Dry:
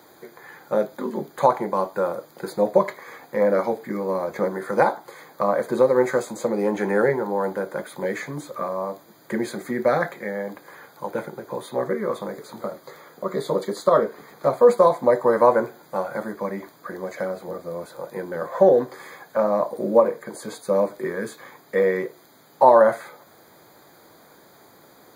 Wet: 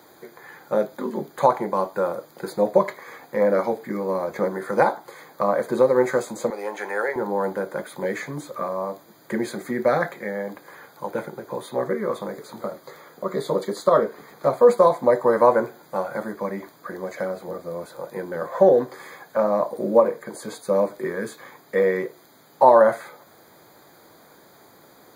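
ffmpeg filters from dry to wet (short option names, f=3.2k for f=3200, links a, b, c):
-filter_complex "[0:a]asettb=1/sr,asplit=3[a][b][c];[a]atrim=end=6.504[d];[b]atrim=start=6.5:end=7.16,asetpts=PTS-STARTPTS,afade=t=in:d=0.004:c=qsin,afade=t=out:st=0.656:d=0.004:c=qsin,highpass=680[e];[c]atrim=start=7.156[f];[d][e]acrossfade=d=0.004:c1=hsin:c2=qsin[g];[g][f]acrossfade=d=0.004:c1=qsin:c2=hsin"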